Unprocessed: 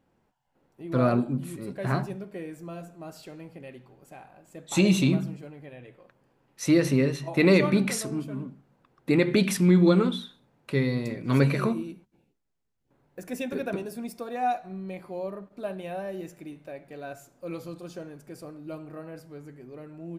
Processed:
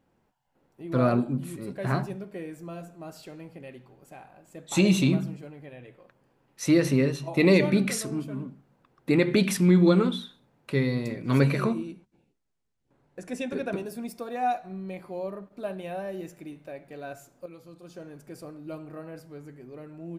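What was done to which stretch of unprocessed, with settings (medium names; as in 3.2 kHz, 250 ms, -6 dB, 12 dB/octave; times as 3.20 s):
7.11–8.07 s: peaking EQ 2.2 kHz -> 740 Hz -14.5 dB 0.21 oct
11.63–13.73 s: low-pass 10 kHz 24 dB/octave
17.46–18.17 s: fade in quadratic, from -12 dB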